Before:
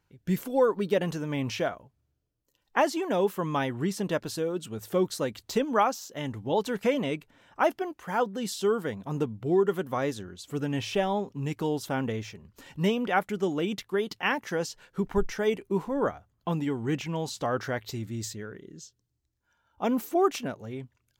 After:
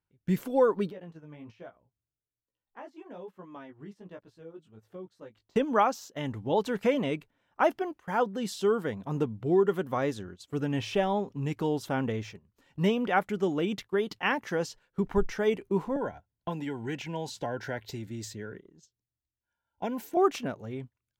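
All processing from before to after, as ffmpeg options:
-filter_complex "[0:a]asettb=1/sr,asplit=3[a][b][c];[a]atrim=end=0.904[d];[b]atrim=start=0.9:end=5.56,asetpts=PTS-STARTPTS,afade=t=in:d=0.004:c=qsin,afade=t=out:st=4.656:d=0.004:c=qsin,flanger=delay=16:depth=3.5:speed=1.2,acompressor=threshold=-42dB:ratio=4:attack=3.2:release=140:knee=1:detection=peak,highshelf=f=4.6k:g=-11[e];[c]atrim=start=5.556[f];[d][e]acrossfade=d=0.004:c1=hsin:c2=qsin[g];[g][f]acrossfade=d=0.004:c1=qsin:c2=hsin,asettb=1/sr,asplit=3[h][i][j];[h]atrim=end=15.964[k];[i]atrim=start=15.96:end=20.17,asetpts=PTS-STARTPTS,afade=t=in:d=0.004:c=qsin,afade=t=out:st=4.206:d=0.004:c=qsin,acrossover=split=270|570[l][m][n];[l]acompressor=threshold=-39dB:ratio=4[o];[m]acompressor=threshold=-39dB:ratio=4[p];[n]acompressor=threshold=-33dB:ratio=4[q];[o][p][q]amix=inputs=3:normalize=0,asuperstop=centerf=1200:order=20:qfactor=4.4[r];[j]atrim=start=20.166[s];[k][r]acrossfade=d=0.004:c1=hsin:c2=qsin[t];[t][s]acrossfade=d=0.004:c1=qsin:c2=hsin,agate=range=-14dB:threshold=-43dB:ratio=16:detection=peak,highshelf=f=4.5k:g=-6.5"

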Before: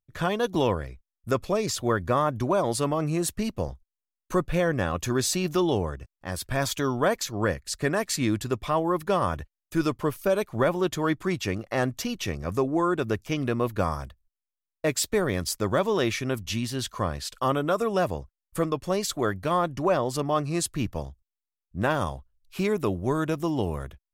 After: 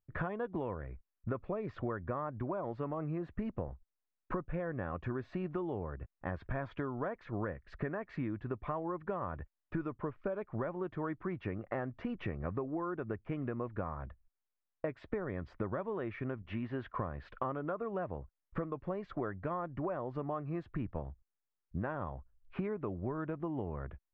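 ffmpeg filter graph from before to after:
-filter_complex "[0:a]asettb=1/sr,asplit=3[a][b][c];[a]atrim=end=16.424[d];[b]atrim=start=16.42:end=16.95,asetpts=PTS-STARTPTS,afade=t=in:d=0.004:c=qsin,afade=t=out:st=0.526:d=0.004:c=qsin,agate=range=-33dB:threshold=-43dB:ratio=3:release=100:detection=peak,bass=f=250:g=-7,treble=f=4k:g=-8[e];[c]atrim=start=16.946[f];[d][e]acrossfade=d=0.004:c1=hsin:c2=qsin[g];[g][f]acrossfade=d=0.004:c1=qsin:c2=hsin,lowpass=f=1.9k:w=0.5412,lowpass=f=1.9k:w=1.3066,acompressor=threshold=-35dB:ratio=16,volume=1.5dB"

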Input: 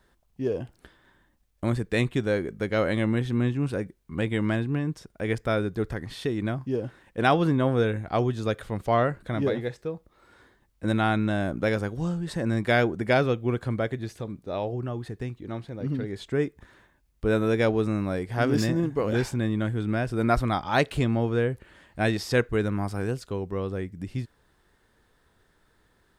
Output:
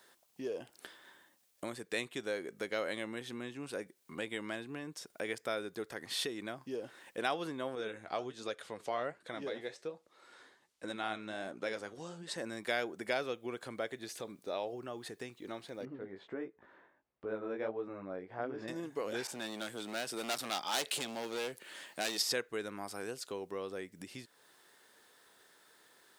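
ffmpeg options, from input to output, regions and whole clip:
-filter_complex "[0:a]asettb=1/sr,asplit=3[a][b][c];[a]atrim=end=7.754[d];[b]atrim=start=7.75:end=12.38,asetpts=PTS-STARTPTS,afade=t=in:d=0.004:c=qsin,afade=t=out:st=4.626:d=0.004:c=qsin,lowpass=8.5k,flanger=delay=1.6:depth=10:regen=67:speed=1.3:shape=triangular[e];[c]atrim=start=12.376[f];[d][e]acrossfade=d=0.004:c1=hsin:c2=qsin[g];[g][f]acrossfade=d=0.004:c1=qsin:c2=hsin,asettb=1/sr,asplit=3[h][i][j];[h]atrim=end=15.854[k];[i]atrim=start=15.85:end=18.68,asetpts=PTS-STARTPTS,afade=t=in:d=0.004:c=qsin,afade=t=out:st=2.826:d=0.004:c=qsin,lowpass=1.3k,flanger=delay=15.5:depth=6.1:speed=1.5[l];[j]atrim=start=18.676[m];[k][l]acrossfade=d=0.004:c1=hsin:c2=qsin[n];[n][m]acrossfade=d=0.004:c1=qsin:c2=hsin,asettb=1/sr,asplit=3[o][p][q];[o]atrim=end=19.274[r];[p]atrim=start=19.27:end=22.22,asetpts=PTS-STARTPTS,afade=t=in:d=0.004:c=qsin,afade=t=out:st=2.946:d=0.004:c=qsin,volume=25dB,asoftclip=hard,volume=-25dB,highpass=f=130:w=0.5412,highpass=f=130:w=1.3066,adynamicequalizer=threshold=0.00501:dfrequency=2400:dqfactor=0.7:tfrequency=2400:tqfactor=0.7:attack=5:release=100:ratio=0.375:range=3.5:mode=boostabove:tftype=highshelf[s];[q]atrim=start=22.216[t];[r][s]acrossfade=d=0.004:c1=hsin:c2=qsin[u];[u][t]acrossfade=d=0.004:c1=qsin:c2=hsin,acompressor=threshold=-39dB:ratio=2.5,highpass=560,equalizer=f=1.1k:w=0.38:g=-8.5,volume=10.5dB"

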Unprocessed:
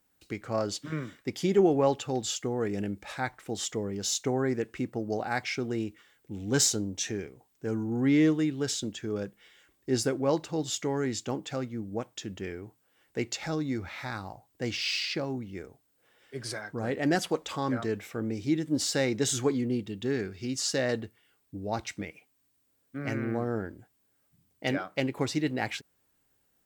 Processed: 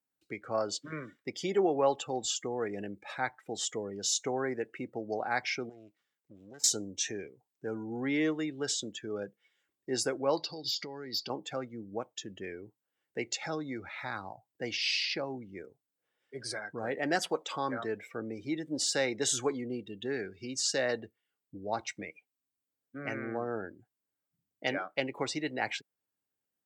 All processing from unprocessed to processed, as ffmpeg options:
-filter_complex "[0:a]asettb=1/sr,asplit=3[a][b][c];[a]atrim=end=5.694[d];[b]atrim=start=5.69:end=6.64,asetpts=PTS-STARTPTS,afade=t=in:d=0.004:c=qsin,afade=t=out:st=0.946:d=0.004:c=qsin,lowshelf=f=330:g=-8.5,acompressor=threshold=-40dB:ratio=6:attack=3.2:release=140:knee=1:detection=peak,aeval=exprs='max(val(0),0)':c=same[e];[c]atrim=start=6.636[f];[d][e]acrossfade=d=0.004:c1=hsin:c2=qsin[g];[g][f]acrossfade=d=0.004:c1=qsin:c2=hsin,asettb=1/sr,asplit=3[h][i][j];[h]atrim=end=10.374[k];[i]atrim=start=10.37:end=11.3,asetpts=PTS-STARTPTS,afade=t=in:d=0.004:c=qsin,afade=t=out:st=0.926:d=0.004:c=qsin,acompressor=threshold=-35dB:ratio=6:attack=3.2:release=140:knee=1:detection=peak,lowpass=f=4.7k:t=q:w=9.5,asoftclip=type=hard:threshold=-28dB[l];[j]atrim=start=11.296[m];[k][l]acrossfade=d=0.004:c1=hsin:c2=qsin[n];[n][m]acrossfade=d=0.004:c1=qsin:c2=hsin,highpass=110,afftdn=nr=17:nf=-45,acrossover=split=420|3000[o][p][q];[o]acompressor=threshold=-58dB:ratio=1.5[r];[r][p][q]amix=inputs=3:normalize=0"

